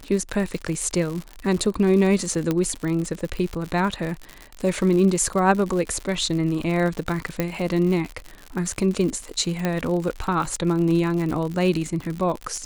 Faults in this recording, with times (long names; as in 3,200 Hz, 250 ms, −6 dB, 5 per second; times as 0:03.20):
surface crackle 91 per second −27 dBFS
0:02.51: click −10 dBFS
0:07.40: click −9 dBFS
0:09.65: click −10 dBFS